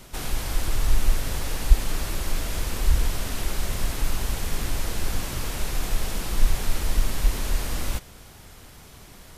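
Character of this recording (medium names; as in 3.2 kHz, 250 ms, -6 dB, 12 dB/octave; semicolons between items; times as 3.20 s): noise floor -47 dBFS; spectral tilt -3.5 dB/octave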